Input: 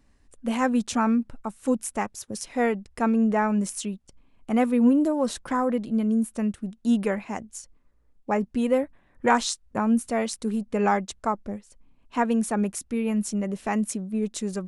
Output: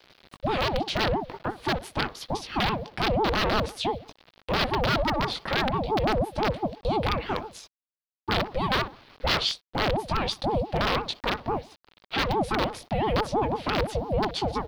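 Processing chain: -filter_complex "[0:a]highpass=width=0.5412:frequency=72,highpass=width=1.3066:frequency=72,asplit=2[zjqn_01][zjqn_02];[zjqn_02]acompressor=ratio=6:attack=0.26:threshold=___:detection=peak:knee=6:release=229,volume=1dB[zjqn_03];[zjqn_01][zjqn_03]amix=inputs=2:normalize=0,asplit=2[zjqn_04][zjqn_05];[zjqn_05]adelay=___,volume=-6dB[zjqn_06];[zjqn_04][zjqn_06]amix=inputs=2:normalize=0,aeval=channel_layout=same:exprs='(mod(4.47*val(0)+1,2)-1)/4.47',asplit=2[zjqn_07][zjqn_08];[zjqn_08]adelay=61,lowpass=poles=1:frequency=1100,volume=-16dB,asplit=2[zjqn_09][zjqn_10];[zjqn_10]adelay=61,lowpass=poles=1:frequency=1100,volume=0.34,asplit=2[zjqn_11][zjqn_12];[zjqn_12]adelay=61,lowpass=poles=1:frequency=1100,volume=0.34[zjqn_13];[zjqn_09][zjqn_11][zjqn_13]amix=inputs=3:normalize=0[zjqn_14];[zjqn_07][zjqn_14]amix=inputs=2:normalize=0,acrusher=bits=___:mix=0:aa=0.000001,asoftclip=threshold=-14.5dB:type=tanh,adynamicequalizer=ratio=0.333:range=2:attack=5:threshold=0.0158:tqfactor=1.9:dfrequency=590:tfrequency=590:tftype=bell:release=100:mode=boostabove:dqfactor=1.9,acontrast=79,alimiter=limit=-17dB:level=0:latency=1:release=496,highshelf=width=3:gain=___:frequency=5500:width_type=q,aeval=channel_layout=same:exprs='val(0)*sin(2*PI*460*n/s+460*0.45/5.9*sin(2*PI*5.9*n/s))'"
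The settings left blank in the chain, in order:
-30dB, 19, 8, -12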